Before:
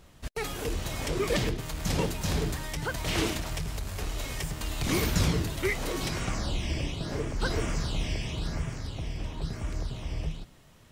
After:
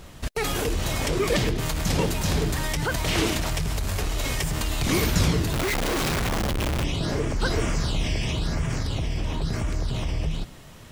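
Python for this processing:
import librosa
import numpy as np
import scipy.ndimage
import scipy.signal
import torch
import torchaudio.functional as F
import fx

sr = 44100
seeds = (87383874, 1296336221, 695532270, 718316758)

p1 = fx.over_compress(x, sr, threshold_db=-37.0, ratio=-1.0)
p2 = x + F.gain(torch.from_numpy(p1), -3.0).numpy()
p3 = fx.schmitt(p2, sr, flips_db=-36.5, at=(5.53, 6.84))
y = F.gain(torch.from_numpy(p3), 3.5).numpy()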